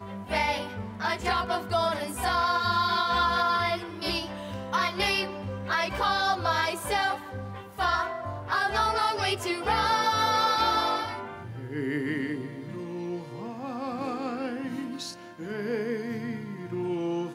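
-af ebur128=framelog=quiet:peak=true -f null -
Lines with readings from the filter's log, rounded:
Integrated loudness:
  I:         -28.0 LUFS
  Threshold: -38.2 LUFS
Loudness range:
  LRA:         8.1 LU
  Threshold: -47.9 LUFS
  LRA low:   -33.7 LUFS
  LRA high:  -25.6 LUFS
True peak:
  Peak:      -13.1 dBFS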